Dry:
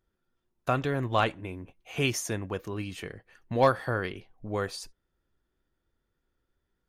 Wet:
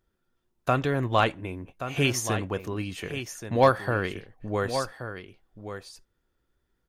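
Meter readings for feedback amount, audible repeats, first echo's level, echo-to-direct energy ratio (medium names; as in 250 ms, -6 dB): no regular repeats, 1, -10.0 dB, -10.0 dB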